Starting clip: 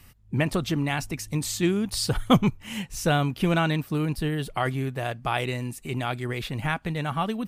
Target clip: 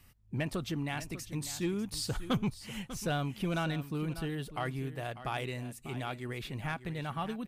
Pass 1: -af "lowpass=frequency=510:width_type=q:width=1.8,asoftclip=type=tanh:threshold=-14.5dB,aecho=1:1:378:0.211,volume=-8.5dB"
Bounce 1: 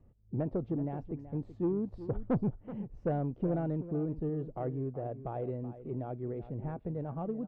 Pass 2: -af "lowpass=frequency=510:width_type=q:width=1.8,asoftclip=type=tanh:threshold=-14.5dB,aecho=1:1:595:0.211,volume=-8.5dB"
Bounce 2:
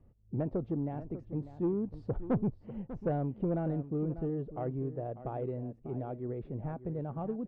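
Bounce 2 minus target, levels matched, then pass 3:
500 Hz band +3.5 dB
-af "asoftclip=type=tanh:threshold=-14.5dB,aecho=1:1:595:0.211,volume=-8.5dB"

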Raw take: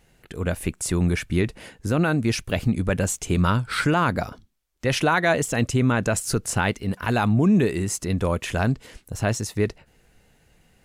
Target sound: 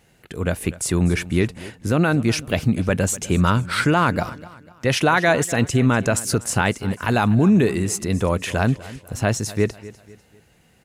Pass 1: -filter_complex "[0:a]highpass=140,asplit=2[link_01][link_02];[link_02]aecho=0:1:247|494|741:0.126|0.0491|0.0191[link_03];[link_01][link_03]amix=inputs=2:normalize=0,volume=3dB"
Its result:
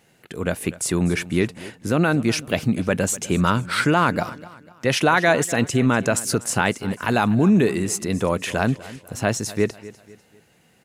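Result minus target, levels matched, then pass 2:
125 Hz band −2.5 dB
-filter_complex "[0:a]highpass=65,asplit=2[link_01][link_02];[link_02]aecho=0:1:247|494|741:0.126|0.0491|0.0191[link_03];[link_01][link_03]amix=inputs=2:normalize=0,volume=3dB"

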